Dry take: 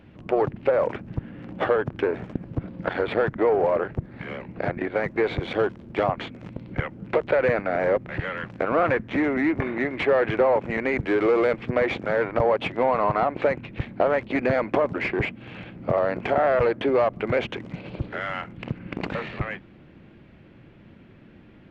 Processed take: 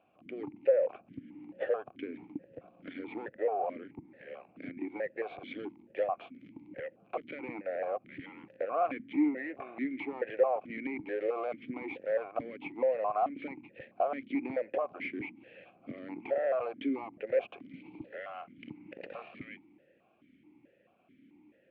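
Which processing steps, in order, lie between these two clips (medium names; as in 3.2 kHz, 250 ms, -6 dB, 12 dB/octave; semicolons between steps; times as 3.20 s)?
stepped vowel filter 4.6 Hz; trim -2 dB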